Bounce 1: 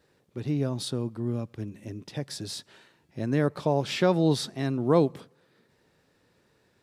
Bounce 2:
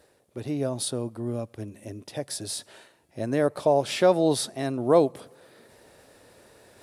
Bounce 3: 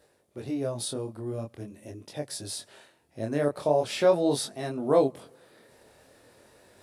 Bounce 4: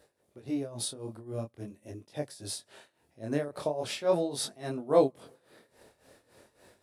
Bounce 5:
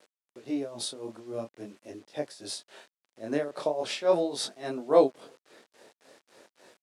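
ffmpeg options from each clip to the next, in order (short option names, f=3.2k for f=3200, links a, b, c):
-af "equalizer=f=160:t=o:w=0.67:g=-7,equalizer=f=630:t=o:w=0.67:g=8,equalizer=f=10k:t=o:w=0.67:g=12,areverse,acompressor=mode=upward:threshold=-43dB:ratio=2.5,areverse"
-af "flanger=delay=20:depth=7.8:speed=0.43"
-af "tremolo=f=3.6:d=0.82"
-af "acrusher=bits=9:mix=0:aa=0.000001,highpass=250,lowpass=7.6k,volume=3dB"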